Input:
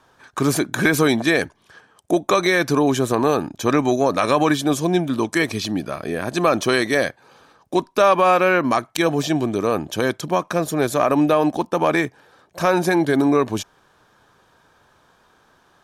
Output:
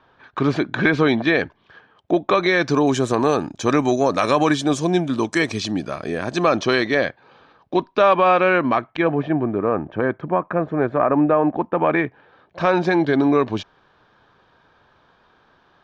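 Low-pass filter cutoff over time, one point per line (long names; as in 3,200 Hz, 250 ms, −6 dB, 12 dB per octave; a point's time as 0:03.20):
low-pass filter 24 dB per octave
0:02.40 3,800 Hz
0:02.91 7,800 Hz
0:06.13 7,800 Hz
0:07.04 4,000 Hz
0:08.56 4,000 Hz
0:09.34 1,900 Hz
0:11.44 1,900 Hz
0:12.76 4,400 Hz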